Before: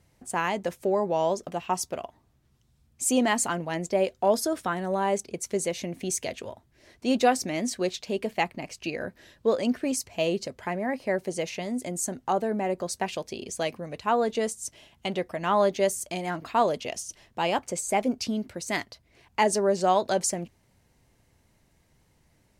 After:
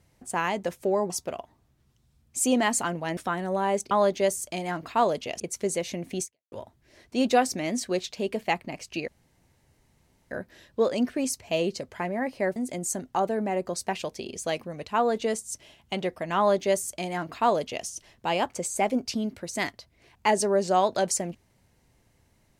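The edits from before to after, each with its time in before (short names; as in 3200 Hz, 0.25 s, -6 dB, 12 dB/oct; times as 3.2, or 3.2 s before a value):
1.1–1.75 cut
3.82–4.56 cut
6.12–6.42 fade out exponential
8.98 insert room tone 1.23 s
11.23–11.69 cut
15.5–16.99 copy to 5.3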